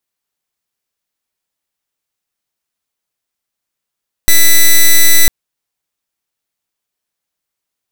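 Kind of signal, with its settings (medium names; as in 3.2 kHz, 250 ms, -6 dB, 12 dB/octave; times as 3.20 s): pulse 1.99 kHz, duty 6% -4.5 dBFS 1.00 s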